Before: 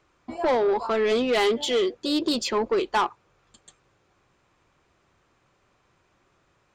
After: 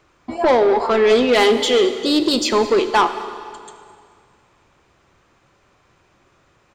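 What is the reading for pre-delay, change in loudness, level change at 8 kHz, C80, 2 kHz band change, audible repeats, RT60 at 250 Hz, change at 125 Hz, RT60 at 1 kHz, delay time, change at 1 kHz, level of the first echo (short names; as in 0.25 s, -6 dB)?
5 ms, +8.0 dB, +8.0 dB, 10.5 dB, +8.0 dB, 1, 2.3 s, n/a, 2.2 s, 0.212 s, +8.0 dB, -20.5 dB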